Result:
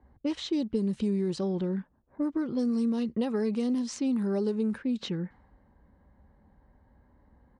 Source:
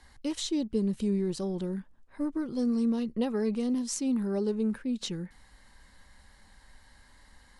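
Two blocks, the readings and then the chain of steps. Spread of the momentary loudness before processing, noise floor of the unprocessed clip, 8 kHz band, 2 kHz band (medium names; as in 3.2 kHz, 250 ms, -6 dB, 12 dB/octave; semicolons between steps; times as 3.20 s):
8 LU, -59 dBFS, -8.0 dB, +1.0 dB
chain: high-pass 62 Hz; level-controlled noise filter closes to 520 Hz, open at -24.5 dBFS; resampled via 22.05 kHz; compression 4:1, threshold -29 dBFS, peak gain reduction 5.5 dB; trim +4 dB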